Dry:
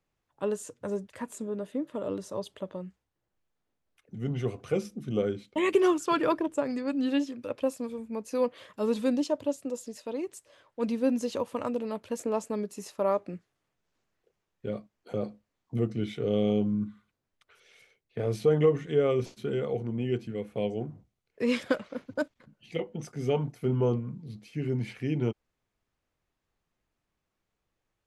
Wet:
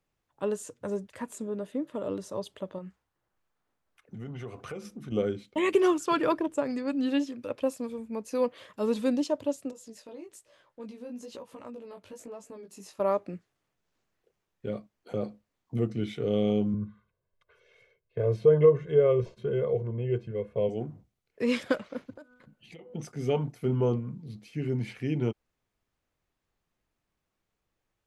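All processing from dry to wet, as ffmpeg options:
ffmpeg -i in.wav -filter_complex "[0:a]asettb=1/sr,asplit=3[link_01][link_02][link_03];[link_01]atrim=end=2.784[link_04];[link_02]atrim=start=2.78:end=5.12,asetpts=PTS-STARTPTS,afade=type=in:duration=0.004:curve=qsin,afade=type=out:start_time=2.336:duration=0.004:curve=qsin,equalizer=frequency=1200:width=0.86:gain=7.5,acompressor=threshold=-37dB:ratio=4:attack=3.2:release=140:knee=1:detection=peak[link_05];[link_03]atrim=start=5.116[link_06];[link_04][link_05]acrossfade=duration=0.004:curve1=hsin:curve2=qsin[link_07];[link_07][link_06]acrossfade=duration=0.004:curve1=qsin:curve2=hsin,asettb=1/sr,asplit=3[link_08][link_09][link_10];[link_08]atrim=end=9.714[link_11];[link_09]atrim=start=9.71:end=13,asetpts=PTS-STARTPTS,afade=type=in:duration=0.004:curve=qsin,afade=type=out:start_time=3.286:duration=0.004:curve=qsin,acompressor=threshold=-41dB:ratio=2.5:attack=3.2:release=140:knee=1:detection=peak,flanger=delay=15:depth=5.9:speed=1.1[link_12];[link_10]atrim=start=12.996[link_13];[link_11][link_12]acrossfade=duration=0.004:curve1=hsin:curve2=qsin[link_14];[link_14][link_13]acrossfade=duration=0.004:curve1=qsin:curve2=hsin,asettb=1/sr,asplit=3[link_15][link_16][link_17];[link_15]atrim=end=16.744[link_18];[link_16]atrim=start=16.74:end=20.69,asetpts=PTS-STARTPTS,afade=type=in:duration=0.004:curve=qsin,afade=type=out:start_time=3.946:duration=0.004:curve=qsin,lowpass=frequency=1100:poles=1,aecho=1:1:1.9:0.86,atrim=end_sample=174195[link_19];[link_17]atrim=start=20.686[link_20];[link_18][link_19]acrossfade=duration=0.004:curve1=hsin:curve2=qsin[link_21];[link_21][link_20]acrossfade=duration=0.004:curve1=qsin:curve2=hsin,asettb=1/sr,asplit=3[link_22][link_23][link_24];[link_22]atrim=end=22.104[link_25];[link_23]atrim=start=22.1:end=22.94,asetpts=PTS-STARTPTS,afade=type=in:duration=0.004:curve=qsin,afade=type=out:start_time=0.836:duration=0.004:curve=qsin,equalizer=frequency=5500:width=3.9:gain=-4.5,bandreject=frequency=248.3:width_type=h:width=4,bandreject=frequency=496.6:width_type=h:width=4,bandreject=frequency=744.9:width_type=h:width=4,bandreject=frequency=993.2:width_type=h:width=4,bandreject=frequency=1241.5:width_type=h:width=4,bandreject=frequency=1489.8:width_type=h:width=4,acompressor=threshold=-44dB:ratio=12:attack=3.2:release=140:knee=1:detection=peak[link_26];[link_24]atrim=start=22.936[link_27];[link_25][link_26]acrossfade=duration=0.004:curve1=hsin:curve2=qsin[link_28];[link_28][link_27]acrossfade=duration=0.004:curve1=qsin:curve2=hsin" out.wav

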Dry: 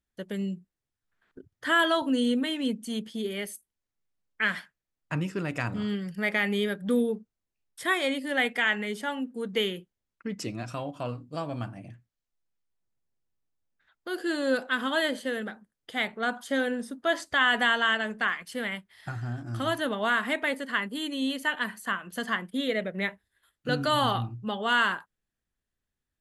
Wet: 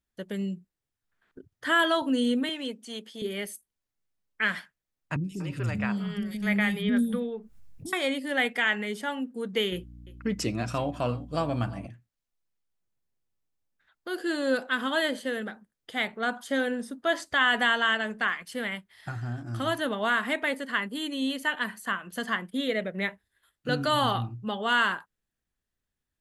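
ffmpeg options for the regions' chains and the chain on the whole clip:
ffmpeg -i in.wav -filter_complex "[0:a]asettb=1/sr,asplit=3[link_01][link_02][link_03];[link_01]atrim=end=2.494[link_04];[link_02]atrim=start=2.49:end=3.22,asetpts=PTS-STARTPTS,afade=type=in:duration=0.004:curve=qsin,afade=type=out:start_time=0.726:duration=0.004:curve=qsin,acrossover=split=7900[link_05][link_06];[link_06]acompressor=threshold=-60dB:ratio=4:attack=1:release=60[link_07];[link_05][link_07]amix=inputs=2:normalize=0,highpass=390[link_08];[link_03]atrim=start=3.216[link_09];[link_04][link_08]acrossfade=duration=0.004:curve1=hsin:curve2=qsin[link_10];[link_10][link_09]acrossfade=duration=0.004:curve1=qsin:curve2=hsin,asettb=1/sr,asplit=3[link_11][link_12][link_13];[link_11]atrim=end=5.164[link_14];[link_12]atrim=start=5.16:end=7.93,asetpts=PTS-STARTPTS,afade=type=in:duration=0.004:curve=qsin,afade=type=out:start_time=2.766:duration=0.004:curve=qsin,acrossover=split=330|3900[link_15][link_16][link_17];[link_17]adelay=80[link_18];[link_16]adelay=240[link_19];[link_15][link_19][link_18]amix=inputs=3:normalize=0,atrim=end_sample=122157,asubboost=boost=11:cutoff=160,acompressor=mode=upward:threshold=-33dB:ratio=2.5:attack=3.2:release=140:knee=2.83:detection=peak[link_20];[link_13]atrim=start=7.926[link_21];[link_14][link_20]acrossfade=duration=0.004:curve1=hsin:curve2=qsin[link_22];[link_22][link_21]acrossfade=duration=0.004:curve1=qsin:curve2=hsin,asettb=1/sr,asplit=3[link_23][link_24][link_25];[link_23]atrim=end=9.724[link_26];[link_24]atrim=start=9.72:end=11.87,asetpts=PTS-STARTPTS,afade=type=in:duration=0.004:curve=qsin,afade=type=out:start_time=2.146:duration=0.004:curve=qsin,aecho=1:1:346:0.0944,atrim=end_sample=94815,acontrast=27,aeval=exprs='val(0)+0.00562*(sin(2*PI*60*n/s)+sin(2*PI*2*60*n/s)/2+sin(2*PI*3*60*n/s)/3+sin(2*PI*4*60*n/s)/4+sin(2*PI*5*60*n/s)/5)':channel_layout=same[link_27];[link_25]atrim=start=11.866[link_28];[link_26][link_27]acrossfade=duration=0.004:curve1=hsin:curve2=qsin[link_29];[link_29][link_28]acrossfade=duration=0.004:curve1=qsin:curve2=hsin" out.wav

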